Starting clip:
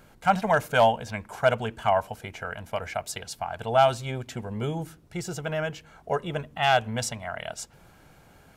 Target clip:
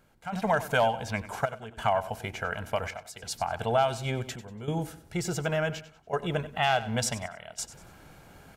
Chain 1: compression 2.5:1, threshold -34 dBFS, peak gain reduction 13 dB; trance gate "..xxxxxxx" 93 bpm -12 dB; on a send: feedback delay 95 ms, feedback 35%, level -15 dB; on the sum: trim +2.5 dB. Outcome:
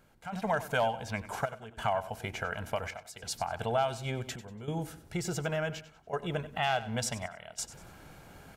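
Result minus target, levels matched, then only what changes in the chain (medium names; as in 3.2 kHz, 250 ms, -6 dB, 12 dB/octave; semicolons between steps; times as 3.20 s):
compression: peak gain reduction +4.5 dB
change: compression 2.5:1, threshold -26.5 dBFS, peak gain reduction 8.5 dB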